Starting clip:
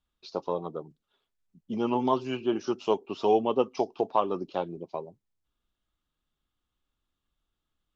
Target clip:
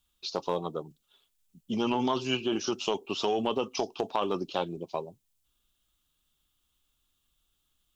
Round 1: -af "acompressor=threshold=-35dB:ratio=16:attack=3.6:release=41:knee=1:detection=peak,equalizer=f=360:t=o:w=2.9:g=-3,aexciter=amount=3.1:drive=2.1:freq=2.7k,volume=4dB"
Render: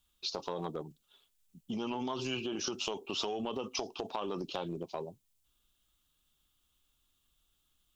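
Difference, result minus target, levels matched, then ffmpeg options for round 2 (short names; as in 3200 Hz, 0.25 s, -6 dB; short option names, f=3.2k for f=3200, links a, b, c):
compressor: peak gain reduction +9 dB
-af "acompressor=threshold=-25.5dB:ratio=16:attack=3.6:release=41:knee=1:detection=peak,equalizer=f=360:t=o:w=2.9:g=-3,aexciter=amount=3.1:drive=2.1:freq=2.7k,volume=4dB"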